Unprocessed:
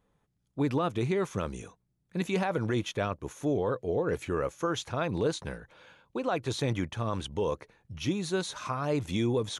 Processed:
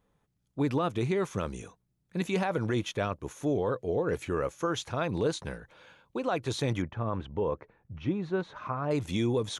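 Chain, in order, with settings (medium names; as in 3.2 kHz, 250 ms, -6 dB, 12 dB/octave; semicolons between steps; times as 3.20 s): 6.82–8.91 s: low-pass 1.7 kHz 12 dB/octave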